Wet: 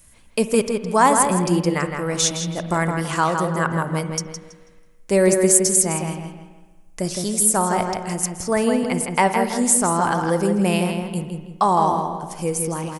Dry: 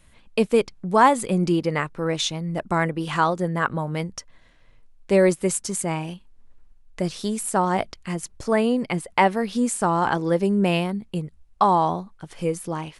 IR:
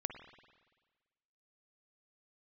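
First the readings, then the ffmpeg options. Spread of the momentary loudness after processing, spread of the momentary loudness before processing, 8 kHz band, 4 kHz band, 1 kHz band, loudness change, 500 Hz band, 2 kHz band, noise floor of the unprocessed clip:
12 LU, 12 LU, +12.5 dB, +2.5 dB, +2.0 dB, +3.0 dB, +2.0 dB, +1.5 dB, -54 dBFS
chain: -filter_complex "[0:a]asplit=2[s0][s1];[s1]adelay=163,lowpass=f=4000:p=1,volume=0.562,asplit=2[s2][s3];[s3]adelay=163,lowpass=f=4000:p=1,volume=0.36,asplit=2[s4][s5];[s5]adelay=163,lowpass=f=4000:p=1,volume=0.36,asplit=2[s6][s7];[s7]adelay=163,lowpass=f=4000:p=1,volume=0.36[s8];[s0][s2][s4][s6][s8]amix=inputs=5:normalize=0,asplit=2[s9][s10];[1:a]atrim=start_sample=2205[s11];[s10][s11]afir=irnorm=-1:irlink=0,volume=1.41[s12];[s9][s12]amix=inputs=2:normalize=0,aexciter=amount=5.1:drive=2.2:freq=5200,volume=0.473"

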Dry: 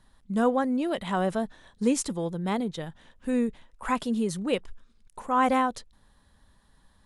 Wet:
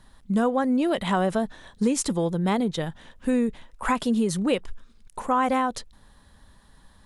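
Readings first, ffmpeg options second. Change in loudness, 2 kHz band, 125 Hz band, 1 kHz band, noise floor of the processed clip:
+2.5 dB, +2.5 dB, +5.5 dB, +1.5 dB, -56 dBFS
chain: -af "acompressor=threshold=0.0501:ratio=6,volume=2.24"

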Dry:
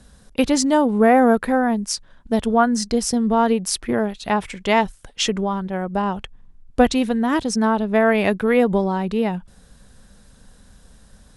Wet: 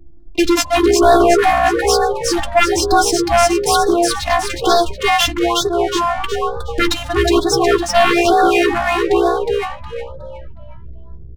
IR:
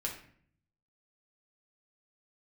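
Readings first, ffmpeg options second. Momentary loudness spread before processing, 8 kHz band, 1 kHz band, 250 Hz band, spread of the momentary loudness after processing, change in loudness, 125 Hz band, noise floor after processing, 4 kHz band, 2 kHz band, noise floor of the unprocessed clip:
9 LU, +6.5 dB, +7.5 dB, +0.5 dB, 9 LU, +5.0 dB, +2.0 dB, -33 dBFS, +9.5 dB, +7.0 dB, -51 dBFS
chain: -filter_complex "[0:a]equalizer=f=670:t=o:w=0.75:g=-3.5,bandreject=f=60:t=h:w=6,bandreject=f=120:t=h:w=6,bandreject=f=180:t=h:w=6,bandreject=f=240:t=h:w=6,bandreject=f=300:t=h:w=6,acrossover=split=320[s0][s1];[s1]aeval=exprs='sgn(val(0))*max(abs(val(0))-0.00335,0)':c=same[s2];[s0][s2]amix=inputs=2:normalize=0,afftfilt=real='hypot(re,im)*cos(PI*b)':imag='0':win_size=512:overlap=0.75,asplit=6[s3][s4][s5][s6][s7][s8];[s4]adelay=364,afreqshift=62,volume=0.596[s9];[s5]adelay=728,afreqshift=124,volume=0.226[s10];[s6]adelay=1092,afreqshift=186,volume=0.0861[s11];[s7]adelay=1456,afreqshift=248,volume=0.0327[s12];[s8]adelay=1820,afreqshift=310,volume=0.0124[s13];[s3][s9][s10][s11][s12][s13]amix=inputs=6:normalize=0,aeval=exprs='0.531*sin(PI/2*3.55*val(0)/0.531)':c=same,adynamicsmooth=sensitivity=5:basefreq=2200,asplit=2[s14][s15];[s15]adelay=13,volume=0.266[s16];[s14][s16]amix=inputs=2:normalize=0,afftfilt=real='re*(1-between(b*sr/1024,380*pow(2500/380,0.5+0.5*sin(2*PI*1.1*pts/sr))/1.41,380*pow(2500/380,0.5+0.5*sin(2*PI*1.1*pts/sr))*1.41))':imag='im*(1-between(b*sr/1024,380*pow(2500/380,0.5+0.5*sin(2*PI*1.1*pts/sr))/1.41,380*pow(2500/380,0.5+0.5*sin(2*PI*1.1*pts/sr))*1.41))':win_size=1024:overlap=0.75"

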